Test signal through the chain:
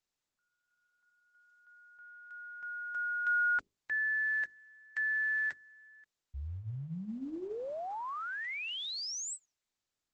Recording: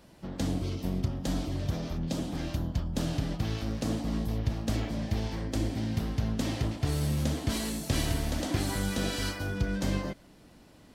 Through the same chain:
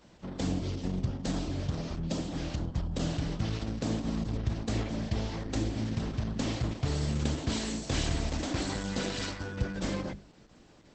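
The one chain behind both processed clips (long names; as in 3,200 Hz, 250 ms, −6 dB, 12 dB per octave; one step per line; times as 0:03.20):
mains-hum notches 50/100/150/200/250/300/350/400 Hz
Opus 10 kbit/s 48,000 Hz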